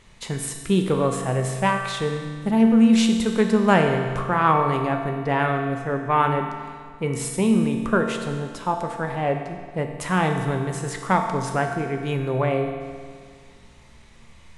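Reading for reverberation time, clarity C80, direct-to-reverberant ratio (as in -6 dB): 1.9 s, 6.0 dB, 3.0 dB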